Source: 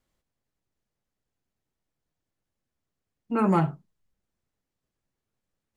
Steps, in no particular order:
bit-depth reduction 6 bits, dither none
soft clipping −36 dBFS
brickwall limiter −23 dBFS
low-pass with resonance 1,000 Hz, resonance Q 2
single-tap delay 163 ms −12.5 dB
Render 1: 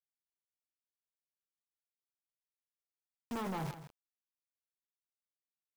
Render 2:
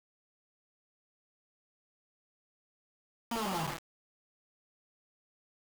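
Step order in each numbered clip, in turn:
low-pass with resonance, then bit-depth reduction, then brickwall limiter, then soft clipping, then single-tap delay
brickwall limiter, then single-tap delay, then soft clipping, then low-pass with resonance, then bit-depth reduction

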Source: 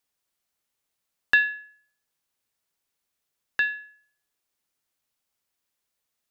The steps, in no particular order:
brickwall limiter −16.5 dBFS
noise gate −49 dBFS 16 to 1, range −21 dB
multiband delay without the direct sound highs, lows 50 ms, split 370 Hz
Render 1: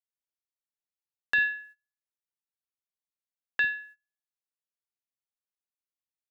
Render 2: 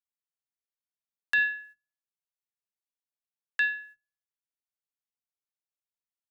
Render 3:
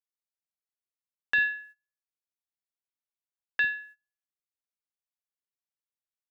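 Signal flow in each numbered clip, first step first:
multiband delay without the direct sound, then noise gate, then brickwall limiter
noise gate, then multiband delay without the direct sound, then brickwall limiter
multiband delay without the direct sound, then brickwall limiter, then noise gate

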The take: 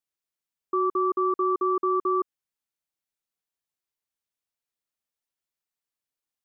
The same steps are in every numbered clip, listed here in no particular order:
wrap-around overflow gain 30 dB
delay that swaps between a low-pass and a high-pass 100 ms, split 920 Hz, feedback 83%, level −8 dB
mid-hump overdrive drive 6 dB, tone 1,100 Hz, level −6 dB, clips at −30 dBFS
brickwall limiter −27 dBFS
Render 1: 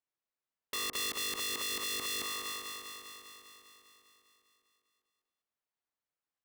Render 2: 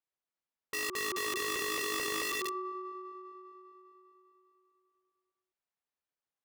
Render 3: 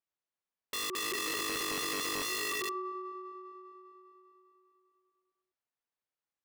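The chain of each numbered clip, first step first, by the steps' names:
mid-hump overdrive, then wrap-around overflow, then delay that swaps between a low-pass and a high-pass, then brickwall limiter
mid-hump overdrive, then brickwall limiter, then delay that swaps between a low-pass and a high-pass, then wrap-around overflow
mid-hump overdrive, then delay that swaps between a low-pass and a high-pass, then wrap-around overflow, then brickwall limiter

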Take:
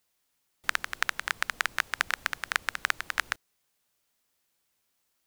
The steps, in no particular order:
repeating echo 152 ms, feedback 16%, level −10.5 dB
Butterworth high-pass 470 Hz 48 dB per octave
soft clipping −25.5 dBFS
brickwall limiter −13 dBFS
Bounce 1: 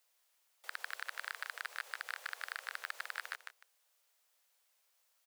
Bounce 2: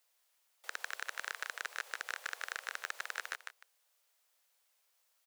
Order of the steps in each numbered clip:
brickwall limiter, then repeating echo, then soft clipping, then Butterworth high-pass
Butterworth high-pass, then brickwall limiter, then repeating echo, then soft clipping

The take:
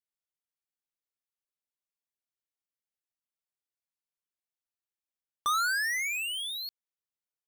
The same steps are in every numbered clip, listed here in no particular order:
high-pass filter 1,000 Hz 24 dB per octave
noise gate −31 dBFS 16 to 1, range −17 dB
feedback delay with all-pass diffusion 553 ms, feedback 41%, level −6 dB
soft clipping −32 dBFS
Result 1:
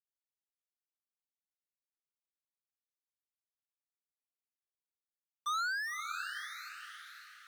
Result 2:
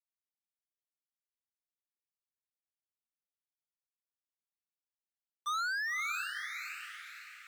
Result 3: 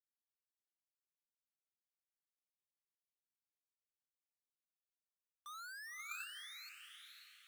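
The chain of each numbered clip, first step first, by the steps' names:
noise gate, then high-pass filter, then soft clipping, then feedback delay with all-pass diffusion
high-pass filter, then noise gate, then soft clipping, then feedback delay with all-pass diffusion
soft clipping, then feedback delay with all-pass diffusion, then noise gate, then high-pass filter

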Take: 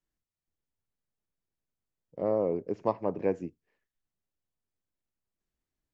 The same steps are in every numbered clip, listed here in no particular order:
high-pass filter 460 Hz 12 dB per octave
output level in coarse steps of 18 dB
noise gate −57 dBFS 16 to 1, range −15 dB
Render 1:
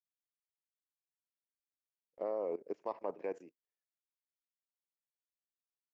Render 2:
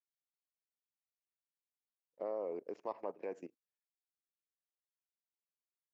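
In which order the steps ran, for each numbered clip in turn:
high-pass filter, then output level in coarse steps, then noise gate
output level in coarse steps, then high-pass filter, then noise gate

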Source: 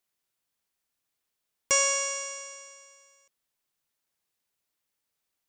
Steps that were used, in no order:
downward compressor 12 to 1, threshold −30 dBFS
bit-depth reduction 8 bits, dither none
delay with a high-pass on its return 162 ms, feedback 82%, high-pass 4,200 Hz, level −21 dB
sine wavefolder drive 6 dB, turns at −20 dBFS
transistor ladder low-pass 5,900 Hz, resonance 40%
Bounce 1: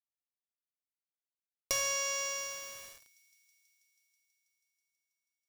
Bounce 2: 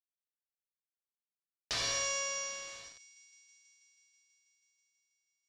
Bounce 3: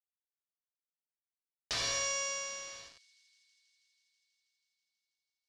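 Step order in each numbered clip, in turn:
transistor ladder low-pass, then sine wavefolder, then downward compressor, then bit-depth reduction, then delay with a high-pass on its return
bit-depth reduction, then delay with a high-pass on its return, then sine wavefolder, then transistor ladder low-pass, then downward compressor
bit-depth reduction, then sine wavefolder, then transistor ladder low-pass, then downward compressor, then delay with a high-pass on its return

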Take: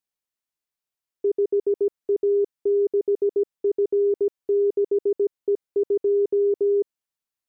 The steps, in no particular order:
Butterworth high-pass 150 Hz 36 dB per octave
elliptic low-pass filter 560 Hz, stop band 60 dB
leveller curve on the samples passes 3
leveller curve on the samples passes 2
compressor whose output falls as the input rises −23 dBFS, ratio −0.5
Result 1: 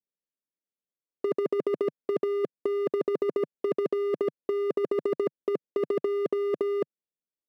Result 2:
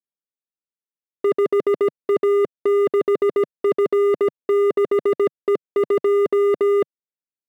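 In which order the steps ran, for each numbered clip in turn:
elliptic low-pass filter, then first leveller curve on the samples, then Butterworth high-pass, then second leveller curve on the samples, then compressor whose output falls as the input rises
compressor whose output falls as the input rises, then elliptic low-pass filter, then second leveller curve on the samples, then Butterworth high-pass, then first leveller curve on the samples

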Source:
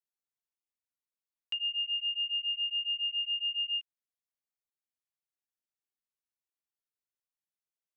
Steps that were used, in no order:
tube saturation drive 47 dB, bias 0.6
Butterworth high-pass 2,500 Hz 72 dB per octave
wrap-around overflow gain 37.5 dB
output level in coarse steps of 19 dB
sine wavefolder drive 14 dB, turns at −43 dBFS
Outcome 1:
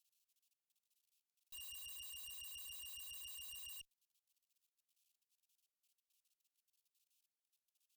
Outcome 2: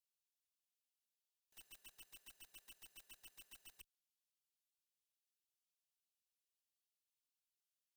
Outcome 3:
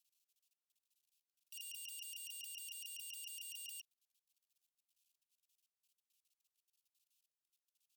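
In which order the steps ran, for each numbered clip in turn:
wrap-around overflow, then output level in coarse steps, then sine wavefolder, then Butterworth high-pass, then tube saturation
wrap-around overflow, then Butterworth high-pass, then sine wavefolder, then tube saturation, then output level in coarse steps
output level in coarse steps, then wrap-around overflow, then tube saturation, then sine wavefolder, then Butterworth high-pass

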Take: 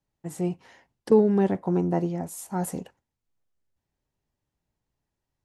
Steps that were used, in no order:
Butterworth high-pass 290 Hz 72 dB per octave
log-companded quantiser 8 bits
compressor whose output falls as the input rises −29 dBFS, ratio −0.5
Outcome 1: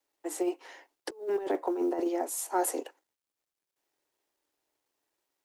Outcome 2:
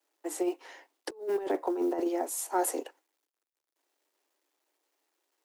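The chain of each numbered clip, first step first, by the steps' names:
Butterworth high-pass, then compressor whose output falls as the input rises, then log-companded quantiser
log-companded quantiser, then Butterworth high-pass, then compressor whose output falls as the input rises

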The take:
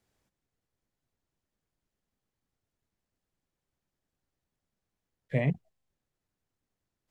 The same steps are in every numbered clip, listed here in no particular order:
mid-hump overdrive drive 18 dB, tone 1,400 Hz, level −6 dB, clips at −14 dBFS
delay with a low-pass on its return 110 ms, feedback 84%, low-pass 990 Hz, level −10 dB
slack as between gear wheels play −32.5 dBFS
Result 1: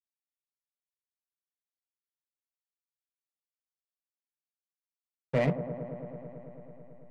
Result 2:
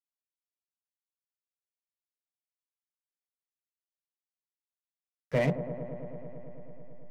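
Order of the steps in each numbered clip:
slack as between gear wheels, then mid-hump overdrive, then delay with a low-pass on its return
mid-hump overdrive, then slack as between gear wheels, then delay with a low-pass on its return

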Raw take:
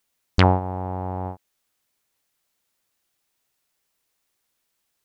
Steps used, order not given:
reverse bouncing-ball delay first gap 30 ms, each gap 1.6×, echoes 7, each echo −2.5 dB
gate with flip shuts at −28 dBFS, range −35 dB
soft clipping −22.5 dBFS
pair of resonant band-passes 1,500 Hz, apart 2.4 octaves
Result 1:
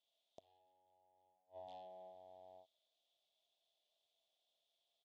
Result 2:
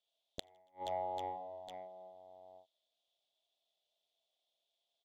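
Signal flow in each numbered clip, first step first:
soft clipping, then reverse bouncing-ball delay, then gate with flip, then pair of resonant band-passes
pair of resonant band-passes, then soft clipping, then reverse bouncing-ball delay, then gate with flip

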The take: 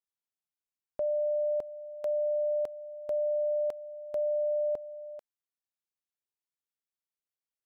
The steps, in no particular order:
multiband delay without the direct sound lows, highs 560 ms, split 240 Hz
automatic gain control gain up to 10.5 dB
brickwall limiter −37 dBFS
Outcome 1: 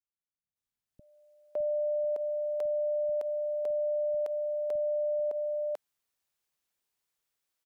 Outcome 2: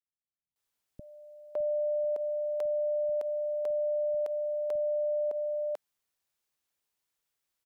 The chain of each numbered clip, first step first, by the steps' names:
brickwall limiter, then automatic gain control, then multiband delay without the direct sound
multiband delay without the direct sound, then brickwall limiter, then automatic gain control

